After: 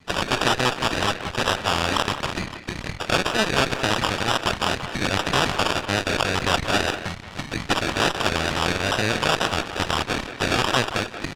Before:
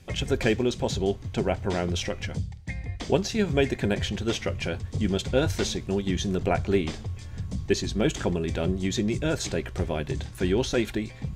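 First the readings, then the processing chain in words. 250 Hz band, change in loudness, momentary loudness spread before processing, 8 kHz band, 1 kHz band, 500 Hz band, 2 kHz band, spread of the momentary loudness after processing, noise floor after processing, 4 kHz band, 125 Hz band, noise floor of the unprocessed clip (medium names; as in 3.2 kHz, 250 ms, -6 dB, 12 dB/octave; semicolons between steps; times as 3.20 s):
-1.5 dB, +5.0 dB, 8 LU, +5.5 dB, +13.0 dB, +0.5 dB, +11.5 dB, 6 LU, -38 dBFS, +10.5 dB, -1.0 dB, -41 dBFS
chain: coarse spectral quantiser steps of 30 dB; on a send: feedback echo behind a high-pass 285 ms, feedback 80%, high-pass 1.6 kHz, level -15 dB; on the sum: sample-and-hold 21×; Chebyshev shaper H 7 -25 dB, 8 -8 dB, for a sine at -8 dBFS; in parallel at -0.5 dB: compressor with a negative ratio -28 dBFS, ratio -1; on the sum: bass shelf 120 Hz +11 dB; wow and flutter 74 cents; low-pass 3.6 kHz 12 dB/octave; tilt EQ +4.5 dB/octave; speakerphone echo 180 ms, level -8 dB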